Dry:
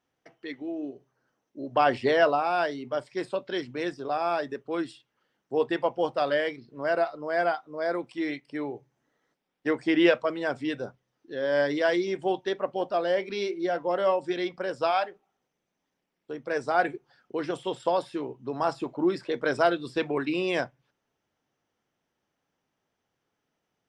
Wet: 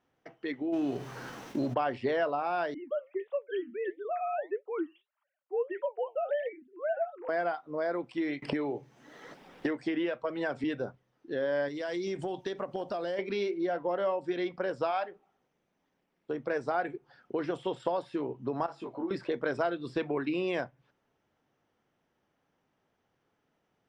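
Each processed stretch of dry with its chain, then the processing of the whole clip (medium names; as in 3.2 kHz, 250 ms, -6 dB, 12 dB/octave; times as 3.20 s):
0.72–1.73 s: formants flattened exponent 0.6 + band-stop 610 Hz, Q 17 + level flattener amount 50%
2.74–7.29 s: formants replaced by sine waves + flange 1.6 Hz, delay 3.3 ms, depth 6.5 ms, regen +76%
8.42–10.64 s: flange 1 Hz, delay 0.9 ms, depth 3.7 ms, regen +73% + three bands compressed up and down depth 100%
11.68–13.19 s: tone controls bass +4 dB, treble +13 dB + compression, threshold -33 dBFS
18.66–19.11 s: bass shelf 120 Hz -11.5 dB + compression 2:1, threshold -35 dBFS + detune thickener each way 20 cents
whole clip: low-pass 2.4 kHz 6 dB/octave; compression 3:1, threshold -35 dBFS; trim +4.5 dB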